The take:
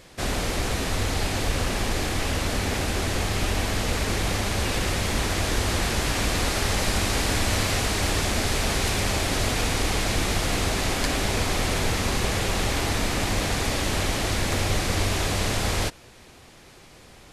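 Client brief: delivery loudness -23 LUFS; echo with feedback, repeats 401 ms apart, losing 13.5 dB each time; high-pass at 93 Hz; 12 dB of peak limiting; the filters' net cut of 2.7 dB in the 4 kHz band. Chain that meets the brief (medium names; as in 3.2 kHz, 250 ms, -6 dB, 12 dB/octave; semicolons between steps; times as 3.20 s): high-pass 93 Hz; peaking EQ 4 kHz -3.5 dB; peak limiter -22.5 dBFS; feedback delay 401 ms, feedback 21%, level -13.5 dB; trim +8 dB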